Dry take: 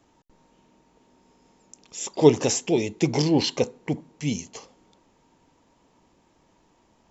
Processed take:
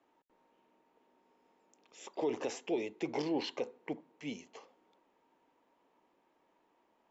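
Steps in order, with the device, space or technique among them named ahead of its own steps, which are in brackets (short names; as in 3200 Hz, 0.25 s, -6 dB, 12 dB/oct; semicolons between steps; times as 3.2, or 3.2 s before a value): DJ mixer with the lows and highs turned down (three-band isolator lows -21 dB, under 270 Hz, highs -16 dB, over 3300 Hz; limiter -17 dBFS, peak gain reduction 11.5 dB); gain -8 dB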